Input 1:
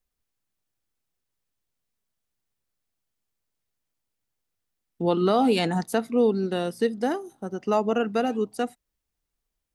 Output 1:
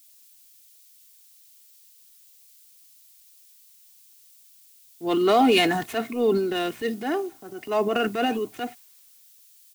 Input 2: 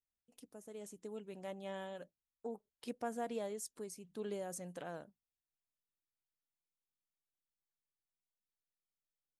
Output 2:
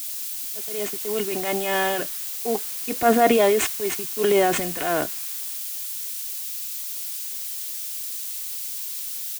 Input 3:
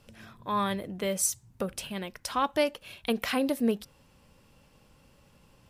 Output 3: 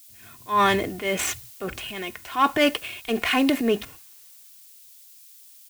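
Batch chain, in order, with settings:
median filter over 9 samples; gate -52 dBFS, range -29 dB; HPF 65 Hz; bell 2300 Hz +8 dB 1.2 oct; comb 2.8 ms, depth 58%; transient shaper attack -7 dB, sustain +7 dB; added noise blue -51 dBFS; three-band expander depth 40%; match loudness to -24 LUFS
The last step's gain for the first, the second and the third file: -0.5, +20.0, +5.5 dB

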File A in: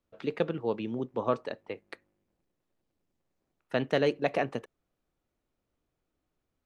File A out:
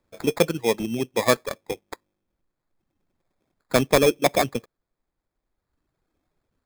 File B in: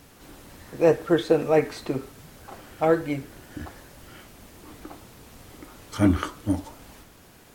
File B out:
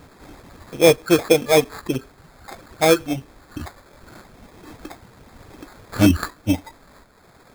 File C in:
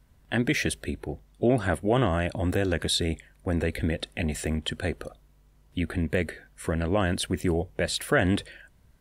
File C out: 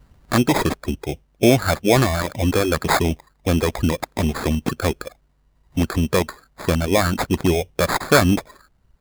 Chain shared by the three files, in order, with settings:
reverb removal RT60 1.4 s; sample-rate reducer 2900 Hz, jitter 0%; normalise peaks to -3 dBFS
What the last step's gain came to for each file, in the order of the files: +9.0, +5.5, +8.5 dB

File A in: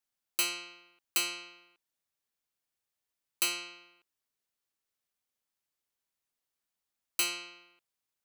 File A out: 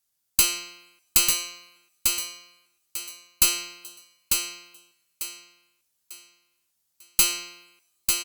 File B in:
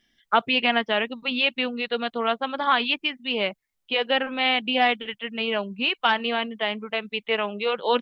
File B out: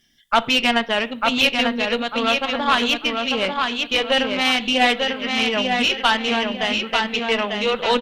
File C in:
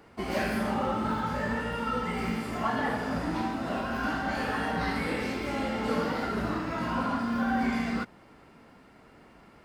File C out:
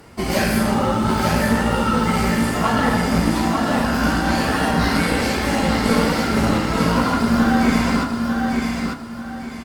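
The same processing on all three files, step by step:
tone controls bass +5 dB, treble +10 dB; on a send: feedback echo 0.896 s, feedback 32%, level -4 dB; on the sum: two-slope reverb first 0.44 s, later 2 s, from -26 dB, DRR 13 dB; added harmonics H 3 -33 dB, 4 -23 dB, 8 -30 dB, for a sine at -3.5 dBFS; Opus 48 kbps 48000 Hz; normalise peaks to -3 dBFS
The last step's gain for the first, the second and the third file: +3.5, +3.0, +8.5 dB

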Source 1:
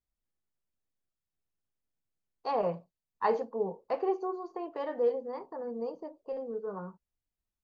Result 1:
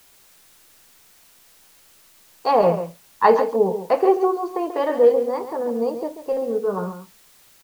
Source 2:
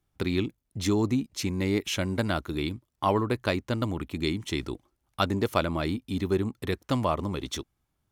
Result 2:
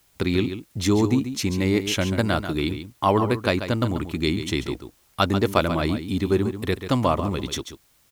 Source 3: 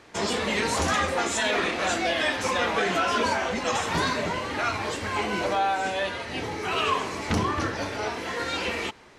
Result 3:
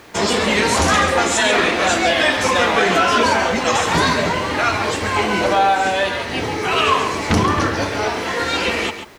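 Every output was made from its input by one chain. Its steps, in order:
added noise white -67 dBFS; on a send: echo 0.138 s -10 dB; on the sum: normalise peaks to -3 dBFS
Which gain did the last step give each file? +13.5, +5.0, +9.0 dB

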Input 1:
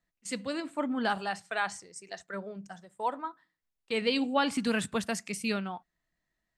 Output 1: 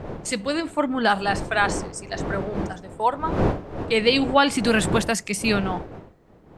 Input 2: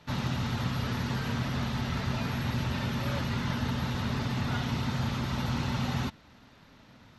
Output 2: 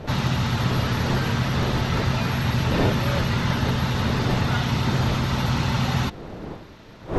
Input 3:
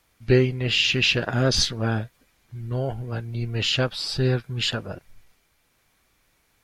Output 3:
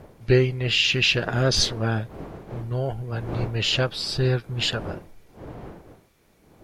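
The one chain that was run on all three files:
wind noise 440 Hz -40 dBFS; bell 250 Hz -5.5 dB 0.23 oct; match loudness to -23 LUFS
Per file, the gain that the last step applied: +10.0, +8.5, +0.5 dB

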